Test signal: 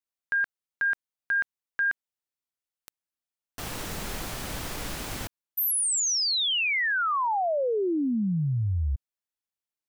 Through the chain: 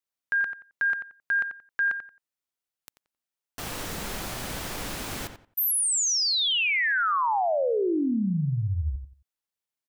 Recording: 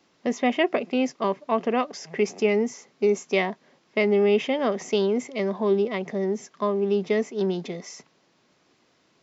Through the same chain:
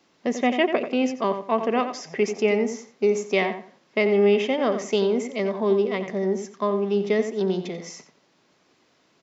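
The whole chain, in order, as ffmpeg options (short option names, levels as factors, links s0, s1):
-filter_complex "[0:a]lowshelf=f=110:g=-4,asplit=2[s0][s1];[s1]adelay=89,lowpass=f=3000:p=1,volume=0.376,asplit=2[s2][s3];[s3]adelay=89,lowpass=f=3000:p=1,volume=0.24,asplit=2[s4][s5];[s5]adelay=89,lowpass=f=3000:p=1,volume=0.24[s6];[s0][s2][s4][s6]amix=inputs=4:normalize=0,volume=1.12"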